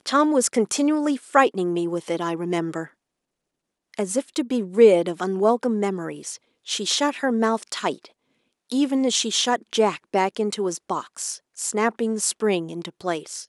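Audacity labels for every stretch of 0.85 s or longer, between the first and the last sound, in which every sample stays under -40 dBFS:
2.880000	3.940000	silence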